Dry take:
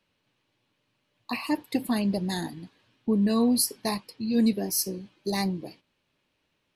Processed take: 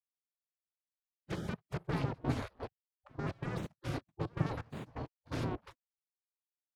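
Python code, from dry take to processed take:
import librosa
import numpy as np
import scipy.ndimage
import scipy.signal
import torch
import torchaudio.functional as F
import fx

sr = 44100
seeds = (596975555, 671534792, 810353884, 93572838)

y = fx.spec_quant(x, sr, step_db=15)
y = fx.recorder_agc(y, sr, target_db=-19.0, rise_db_per_s=11.0, max_gain_db=30)
y = fx.fuzz(y, sr, gain_db=36.0, gate_db=-45.0)
y = fx.step_gate(y, sr, bpm=127, pattern='.x.xx.xx.x.xx', floor_db=-24.0, edge_ms=4.5)
y = fx.spec_gate(y, sr, threshold_db=-20, keep='weak')
y = fx.bandpass_q(y, sr, hz=150.0, q=1.5)
y = y * librosa.db_to_amplitude(7.5)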